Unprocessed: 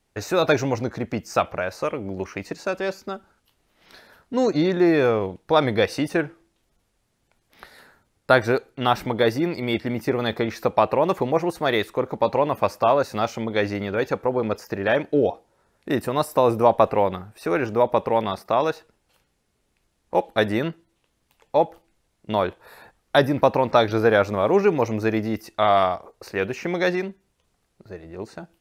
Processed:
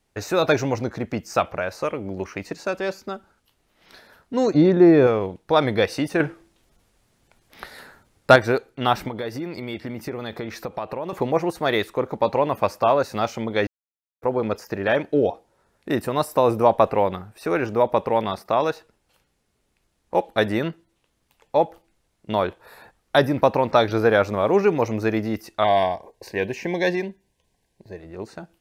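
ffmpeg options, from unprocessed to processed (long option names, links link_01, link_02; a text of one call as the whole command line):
ffmpeg -i in.wav -filter_complex "[0:a]asettb=1/sr,asplit=3[link_01][link_02][link_03];[link_01]atrim=end=4.544[link_04];[link_02]atrim=start=4.54:end=5.07,asetpts=PTS-STARTPTS,afade=type=in:duration=0.004:curve=qsin,afade=type=out:start_time=0.526:duration=0.004:curve=qsin,tiltshelf=frequency=1100:gain=6[link_05];[link_03]atrim=start=5.066[link_06];[link_04][link_05]acrossfade=duration=0.004:curve1=hsin:curve2=qsin[link_07];[link_07][link_06]acrossfade=duration=0.004:curve1=qsin:curve2=hsin,asettb=1/sr,asplit=3[link_08][link_09][link_10];[link_08]atrim=end=6.204[link_11];[link_09]atrim=start=6.2:end=8.36,asetpts=PTS-STARTPTS,afade=type=in:duration=0.004:curve=qsin,afade=type=out:start_time=2.156:duration=0.004:curve=qsin,acontrast=65[link_12];[link_10]atrim=start=8.356[link_13];[link_11][link_12]acrossfade=duration=0.004:curve1=hsin:curve2=qsin[link_14];[link_14][link_13]acrossfade=duration=0.004:curve1=qsin:curve2=hsin,asettb=1/sr,asplit=3[link_15][link_16][link_17];[link_15]atrim=end=9.084[link_18];[link_16]atrim=start=9.08:end=11.13,asetpts=PTS-STARTPTS,afade=type=in:duration=0.004:curve=qsin,afade=type=out:start_time=2.046:duration=0.004:curve=qsin,acompressor=threshold=-28dB:ratio=3:attack=3.2:release=140:knee=1:detection=peak[link_19];[link_17]atrim=start=11.126[link_20];[link_18][link_19]acrossfade=duration=0.004:curve1=hsin:curve2=qsin[link_21];[link_21][link_20]acrossfade=duration=0.004:curve1=qsin:curve2=hsin,asettb=1/sr,asplit=3[link_22][link_23][link_24];[link_22]atrim=end=25.644[link_25];[link_23]atrim=start=25.64:end=27.99,asetpts=PTS-STARTPTS,afade=type=in:duration=0.004:curve=qsin,afade=type=out:start_time=2.346:duration=0.004:curve=qsin,asuperstop=centerf=1300:order=12:qfactor=3.1[link_26];[link_24]atrim=start=27.986[link_27];[link_25][link_26]acrossfade=duration=0.004:curve1=hsin:curve2=qsin[link_28];[link_28][link_27]acrossfade=duration=0.004:curve1=qsin:curve2=hsin,asplit=3[link_29][link_30][link_31];[link_29]atrim=end=13.67,asetpts=PTS-STARTPTS,afade=type=out:start_time=13.666:duration=0.004:curve=hsin[link_32];[link_30]atrim=start=13.67:end=14.22,asetpts=PTS-STARTPTS,volume=0[link_33];[link_31]atrim=start=14.22,asetpts=PTS-STARTPTS,afade=type=in:duration=0.004:curve=hsin[link_34];[link_32][link_33][link_34]concat=n=3:v=0:a=1" out.wav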